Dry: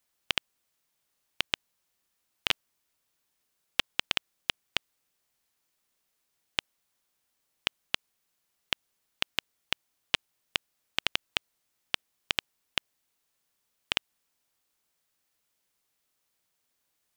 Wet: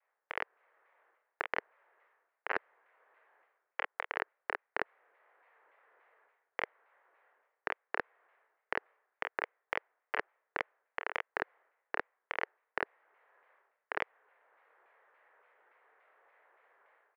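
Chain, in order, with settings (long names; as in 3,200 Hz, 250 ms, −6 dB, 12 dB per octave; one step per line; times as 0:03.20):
elliptic band-pass filter 450–1,900 Hz, stop band 50 dB
automatic gain control gain up to 15 dB
ambience of single reflections 28 ms −8.5 dB, 48 ms −8.5 dB
reversed playback
downward compressor 6 to 1, threshold −39 dBFS, peak gain reduction 21 dB
reversed playback
pitch modulation by a square or saw wave saw down 3.5 Hz, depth 160 cents
level +6 dB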